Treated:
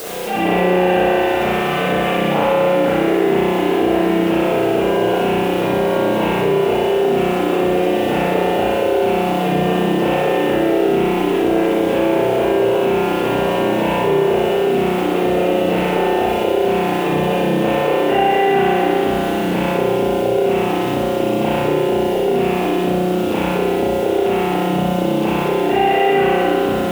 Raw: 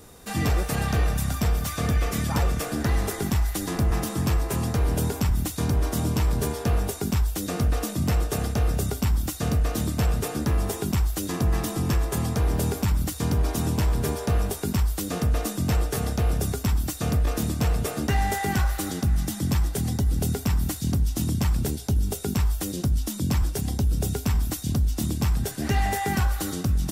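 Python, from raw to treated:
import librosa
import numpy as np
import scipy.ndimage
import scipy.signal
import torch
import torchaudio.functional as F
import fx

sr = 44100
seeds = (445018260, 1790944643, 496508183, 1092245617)

p1 = fx.cabinet(x, sr, low_hz=340.0, low_slope=12, high_hz=2900.0, hz=(360.0, 510.0, 740.0, 1200.0, 1800.0, 2800.0), db=(5, 8, 5, -7, -7, 4))
p2 = fx.quant_dither(p1, sr, seeds[0], bits=8, dither='triangular')
p3 = p2 + fx.room_flutter(p2, sr, wall_m=10.4, rt60_s=1.3, dry=0)
p4 = fx.rev_spring(p3, sr, rt60_s=1.7, pass_ms=(33,), chirp_ms=75, drr_db=-10.0)
y = fx.env_flatten(p4, sr, amount_pct=50)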